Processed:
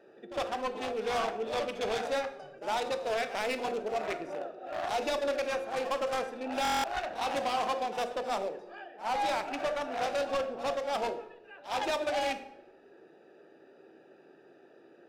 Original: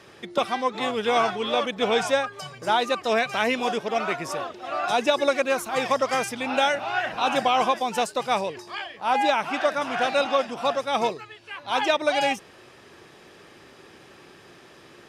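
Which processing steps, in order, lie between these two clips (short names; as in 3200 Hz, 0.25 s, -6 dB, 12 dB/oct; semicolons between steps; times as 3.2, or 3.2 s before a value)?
Wiener smoothing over 41 samples; HPF 410 Hz 12 dB/oct; notches 60/120/180/240/300/360/420/480/540/600 Hz; in parallel at +1.5 dB: limiter -16.5 dBFS, peak gain reduction 8 dB; on the sum: soft clip -21.5 dBFS, distortion -7 dB; pre-echo 58 ms -14 dB; on a send at -9 dB: reverb RT60 0.85 s, pre-delay 13 ms; on the sum: stuck buffer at 6.63, samples 1024, times 8; gain -5.5 dB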